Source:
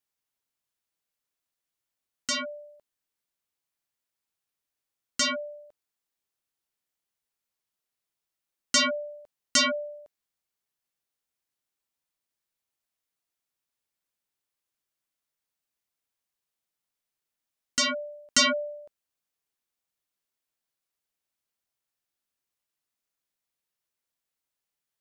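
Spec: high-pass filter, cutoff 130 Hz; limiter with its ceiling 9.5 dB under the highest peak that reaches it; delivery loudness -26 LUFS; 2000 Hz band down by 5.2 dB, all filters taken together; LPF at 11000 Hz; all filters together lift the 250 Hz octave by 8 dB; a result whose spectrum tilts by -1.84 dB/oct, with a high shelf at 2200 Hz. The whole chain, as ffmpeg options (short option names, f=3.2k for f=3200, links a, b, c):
-af "highpass=130,lowpass=11k,equalizer=f=250:t=o:g=8.5,equalizer=f=2k:t=o:g=-3,highshelf=f=2.2k:g=-7,volume=7dB,alimiter=limit=-15dB:level=0:latency=1"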